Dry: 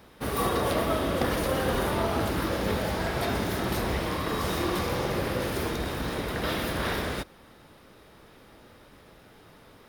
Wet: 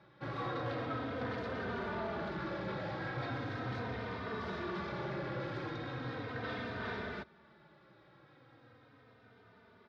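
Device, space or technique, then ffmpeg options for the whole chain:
barber-pole flanger into a guitar amplifier: -filter_complex "[0:a]asplit=2[a][b];[b]adelay=3.1,afreqshift=-0.38[c];[a][c]amix=inputs=2:normalize=1,asoftclip=type=tanh:threshold=-27dB,highpass=110,equalizer=f=120:t=q:w=4:g=9,equalizer=f=1.5k:t=q:w=4:g=5,equalizer=f=2.9k:t=q:w=4:g=-6,lowpass=f=4.1k:w=0.5412,lowpass=f=4.1k:w=1.3066,volume=-6dB"

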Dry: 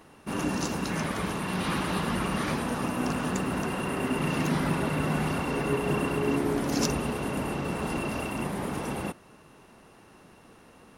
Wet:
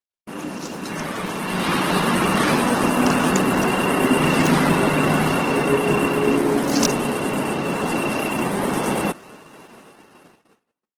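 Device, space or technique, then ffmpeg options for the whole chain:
video call: -af "highpass=180,dynaudnorm=f=640:g=5:m=13dB,agate=range=-49dB:threshold=-42dB:ratio=16:detection=peak" -ar 48000 -c:a libopus -b:a 16k

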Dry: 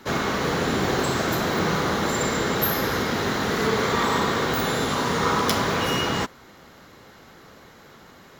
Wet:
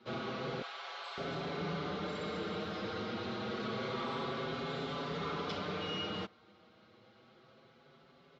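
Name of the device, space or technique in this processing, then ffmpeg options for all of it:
barber-pole flanger into a guitar amplifier: -filter_complex "[0:a]asplit=2[a][b];[b]adelay=5.8,afreqshift=0.28[c];[a][c]amix=inputs=2:normalize=1,asoftclip=type=tanh:threshold=-19dB,highpass=110,equalizer=f=280:t=q:w=4:g=-4,equalizer=f=960:t=q:w=4:g=-7,equalizer=f=1.8k:t=q:w=4:g=-10,lowpass=f=4.2k:w=0.5412,lowpass=f=4.2k:w=1.3066,asettb=1/sr,asplit=3[d][e][f];[d]atrim=end=0.624[g];[e]atrim=start=0.62:end=1.18,asetpts=PTS-STARTPTS,afade=t=in:d=0.004:c=qsin,afade=t=out:st=0.556:d=0.004:c=qsin,highpass=f=770:w=0.5412,highpass=f=770:w=1.3066[h];[f]atrim=start=1.176[i];[g][h]acrossfade=d=0.004:c1=hsin:c2=qsin[j];[j][i]acrossfade=d=0.004:c1=qsin:c2=hsin,volume=-8.5dB"

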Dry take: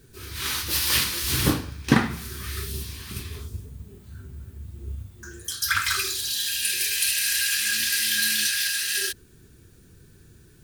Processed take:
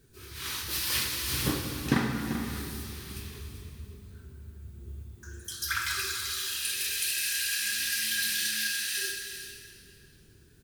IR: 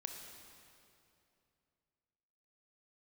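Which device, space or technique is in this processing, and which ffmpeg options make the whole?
cave: -filter_complex "[0:a]aecho=1:1:389:0.282[a];[1:a]atrim=start_sample=2205[b];[a][b]afir=irnorm=-1:irlink=0,volume=-4dB"

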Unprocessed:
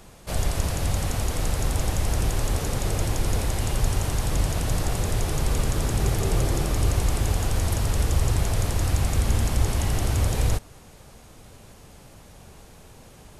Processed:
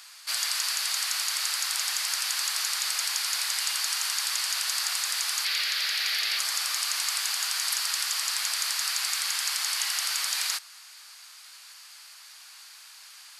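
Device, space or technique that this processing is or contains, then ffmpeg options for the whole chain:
headphones lying on a table: -filter_complex "[0:a]asettb=1/sr,asplit=3[a][b][c];[a]atrim=end=5.454[d];[b]atrim=start=5.45:end=6.39,asetpts=PTS-STARTPTS,afade=t=in:d=0.004:c=qsin,afade=t=out:st=0.936:d=0.004:c=qsin,equalizer=f=125:t=o:w=1:g=-6,equalizer=f=250:t=o:w=1:g=4,equalizer=f=500:t=o:w=1:g=4,equalizer=f=1k:t=o:w=1:g=-8,equalizer=f=2k:t=o:w=1:g=6,equalizer=f=4k:t=o:w=1:g=6,equalizer=f=8k:t=o:w=1:g=-11[e];[c]atrim=start=6.386[f];[d][e]acrossfade=d=0.004:c1=hsin:c2=qsin[g];[g][f]acrossfade=d=0.004:c1=qsin:c2=hsin,highpass=f=1.3k:w=0.5412,highpass=f=1.3k:w=1.3066,equalizer=f=4.6k:t=o:w=0.34:g=10.5,volume=5dB"

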